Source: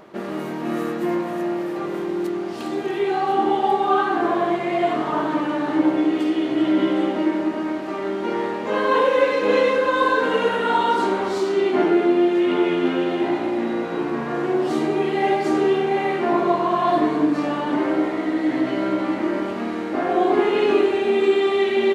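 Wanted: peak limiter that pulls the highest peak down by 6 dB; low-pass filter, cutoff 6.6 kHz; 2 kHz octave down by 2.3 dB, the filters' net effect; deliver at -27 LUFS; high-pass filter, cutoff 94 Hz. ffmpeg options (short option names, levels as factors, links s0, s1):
-af "highpass=94,lowpass=6600,equalizer=f=2000:t=o:g=-3,volume=0.596,alimiter=limit=0.141:level=0:latency=1"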